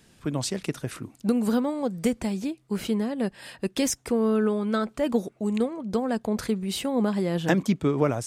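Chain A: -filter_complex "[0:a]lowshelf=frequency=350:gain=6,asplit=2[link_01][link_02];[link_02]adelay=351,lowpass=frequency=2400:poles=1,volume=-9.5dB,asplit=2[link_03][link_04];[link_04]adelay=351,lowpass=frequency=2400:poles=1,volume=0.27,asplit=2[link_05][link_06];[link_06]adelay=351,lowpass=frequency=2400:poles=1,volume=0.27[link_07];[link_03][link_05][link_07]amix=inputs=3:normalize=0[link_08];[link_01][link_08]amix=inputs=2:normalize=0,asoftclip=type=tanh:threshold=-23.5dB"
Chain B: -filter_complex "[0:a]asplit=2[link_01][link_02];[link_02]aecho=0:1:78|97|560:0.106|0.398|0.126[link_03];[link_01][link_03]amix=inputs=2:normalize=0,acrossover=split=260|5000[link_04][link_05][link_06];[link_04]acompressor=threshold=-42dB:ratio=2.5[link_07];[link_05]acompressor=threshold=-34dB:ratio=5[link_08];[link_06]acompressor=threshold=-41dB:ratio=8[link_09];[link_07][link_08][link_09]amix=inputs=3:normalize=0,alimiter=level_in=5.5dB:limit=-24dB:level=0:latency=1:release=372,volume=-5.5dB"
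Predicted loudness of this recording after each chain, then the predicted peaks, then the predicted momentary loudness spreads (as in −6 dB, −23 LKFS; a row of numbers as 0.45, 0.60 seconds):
−28.5, −40.0 LKFS; −23.5, −29.5 dBFS; 4, 4 LU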